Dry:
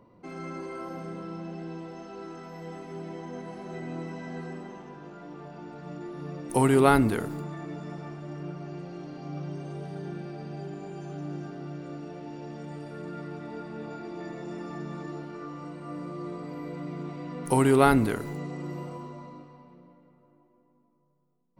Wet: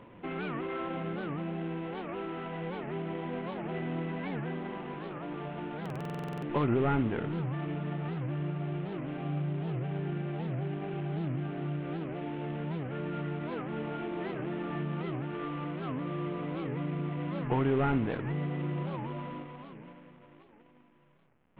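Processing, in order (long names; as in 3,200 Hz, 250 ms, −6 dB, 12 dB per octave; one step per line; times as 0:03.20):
variable-slope delta modulation 16 kbit/s
dynamic equaliser 150 Hz, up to +6 dB, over −49 dBFS, Q 6.8
downward compressor 2 to 1, threshold −40 dBFS, peak gain reduction 12.5 dB
buffer that repeats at 0:05.82, samples 2,048, times 12
wow of a warped record 78 rpm, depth 250 cents
level +5.5 dB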